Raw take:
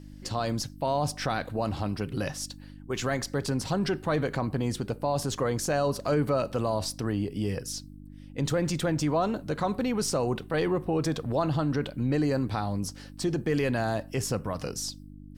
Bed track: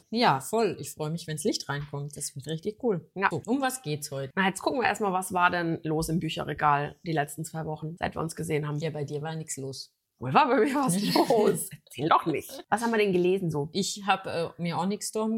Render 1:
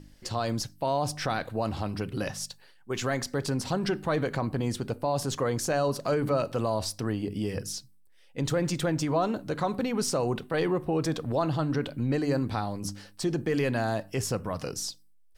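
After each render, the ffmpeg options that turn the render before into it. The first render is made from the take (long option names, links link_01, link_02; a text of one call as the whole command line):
ffmpeg -i in.wav -af "bandreject=frequency=50:width_type=h:width=4,bandreject=frequency=100:width_type=h:width=4,bandreject=frequency=150:width_type=h:width=4,bandreject=frequency=200:width_type=h:width=4,bandreject=frequency=250:width_type=h:width=4,bandreject=frequency=300:width_type=h:width=4" out.wav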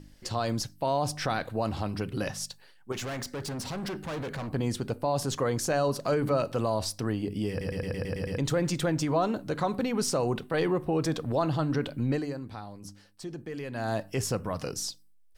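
ffmpeg -i in.wav -filter_complex "[0:a]asettb=1/sr,asplit=3[link_01][link_02][link_03];[link_01]atrim=end=2.924[link_04];[link_02]atrim=start=2.92:end=4.54,asetpts=PTS-STARTPTS,afade=type=in:duration=0.004:curve=qsin,afade=type=out:start_time=1.616:duration=0.004:curve=qsin,volume=32.5dB,asoftclip=hard,volume=-32.5dB[link_05];[link_03]atrim=start=4.536[link_06];[link_04][link_05]acrossfade=duration=0.004:curve1=hsin:curve2=qsin[link_07];[link_07][link_06]acrossfade=duration=0.004:curve1=qsin:curve2=hsin,asplit=11[link_08][link_09][link_10][link_11][link_12][link_13][link_14][link_15][link_16][link_17][link_18];[link_08]atrim=end=7.612[link_19];[link_09]atrim=start=7.498:end=7.612[link_20];[link_10]atrim=start=7.498:end=7.612[link_21];[link_11]atrim=start=7.498:end=7.612[link_22];[link_12]atrim=start=7.498:end=7.612[link_23];[link_13]atrim=start=7.498:end=7.612[link_24];[link_14]atrim=start=7.498:end=7.612[link_25];[link_15]atrim=start=7.498:end=7.612[link_26];[link_16]atrim=start=8.378:end=12.34,asetpts=PTS-STARTPTS,afade=type=out:start_time=3.722:duration=0.24:silence=0.298538[link_27];[link_17]atrim=start=12.34:end=13.71,asetpts=PTS-STARTPTS,volume=-10.5dB[link_28];[link_18]atrim=start=13.71,asetpts=PTS-STARTPTS,afade=type=in:duration=0.24:silence=0.298538[link_29];[link_19][link_20]acrossfade=duration=0.004:curve1=hsin:curve2=hsin[link_30];[link_30][link_21]acrossfade=duration=0.004:curve1=hsin:curve2=hsin[link_31];[link_31][link_22]acrossfade=duration=0.004:curve1=hsin:curve2=hsin[link_32];[link_32][link_23]acrossfade=duration=0.004:curve1=hsin:curve2=hsin[link_33];[link_33][link_24]acrossfade=duration=0.004:curve1=hsin:curve2=hsin[link_34];[link_34][link_25]acrossfade=duration=0.004:curve1=hsin:curve2=hsin[link_35];[link_35][link_26]acrossfade=duration=0.004:curve1=hsin:curve2=hsin[link_36];[link_27][link_28][link_29]concat=n=3:v=0:a=1[link_37];[link_36][link_37]acrossfade=duration=0.004:curve1=hsin:curve2=hsin" out.wav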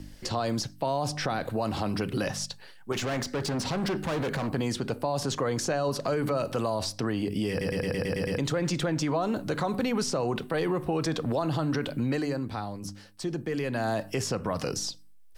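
ffmpeg -i in.wav -filter_complex "[0:a]acrossover=split=140|880|6900[link_01][link_02][link_03][link_04];[link_01]acompressor=threshold=-47dB:ratio=4[link_05];[link_02]acompressor=threshold=-32dB:ratio=4[link_06];[link_03]acompressor=threshold=-39dB:ratio=4[link_07];[link_04]acompressor=threshold=-56dB:ratio=4[link_08];[link_05][link_06][link_07][link_08]amix=inputs=4:normalize=0,asplit=2[link_09][link_10];[link_10]alimiter=level_in=5.5dB:limit=-24dB:level=0:latency=1:release=25,volume=-5.5dB,volume=2.5dB[link_11];[link_09][link_11]amix=inputs=2:normalize=0" out.wav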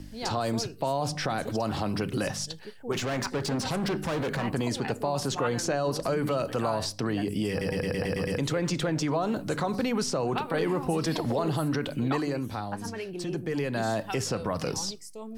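ffmpeg -i in.wav -i bed.wav -filter_complex "[1:a]volume=-12.5dB[link_01];[0:a][link_01]amix=inputs=2:normalize=0" out.wav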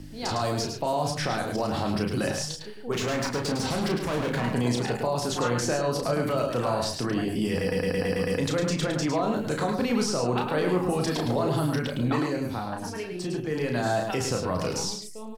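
ffmpeg -i in.wav -filter_complex "[0:a]asplit=2[link_01][link_02];[link_02]adelay=33,volume=-5dB[link_03];[link_01][link_03]amix=inputs=2:normalize=0,aecho=1:1:106:0.501" out.wav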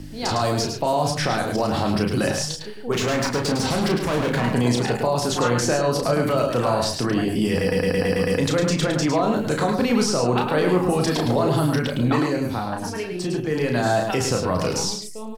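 ffmpeg -i in.wav -af "volume=5.5dB" out.wav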